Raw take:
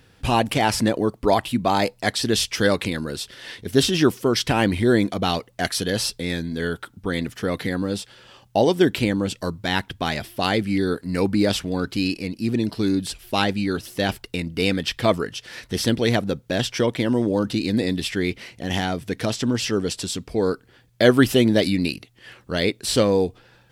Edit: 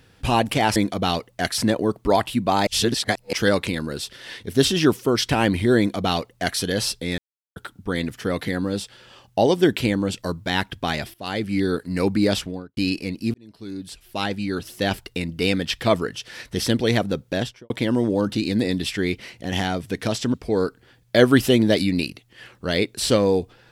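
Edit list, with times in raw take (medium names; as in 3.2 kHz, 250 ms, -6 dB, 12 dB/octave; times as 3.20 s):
1.85–2.51 s: reverse
4.96–5.78 s: copy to 0.76 s
6.36–6.74 s: mute
10.32–10.77 s: fade in linear, from -17 dB
11.51–11.95 s: studio fade out
12.52–14.05 s: fade in
16.49–16.88 s: studio fade out
19.52–20.20 s: delete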